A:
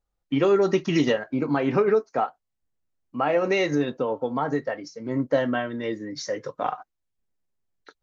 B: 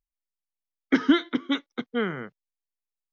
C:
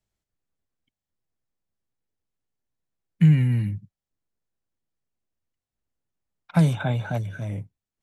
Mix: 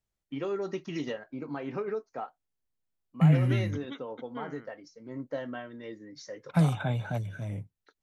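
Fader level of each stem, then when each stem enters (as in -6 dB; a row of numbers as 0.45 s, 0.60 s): -13.0 dB, -16.5 dB, -5.0 dB; 0.00 s, 2.40 s, 0.00 s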